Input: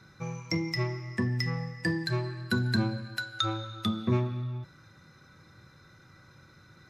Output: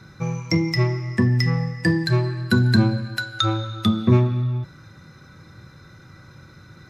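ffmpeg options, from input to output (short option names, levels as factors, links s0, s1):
-af "lowshelf=f=350:g=5,volume=2.24"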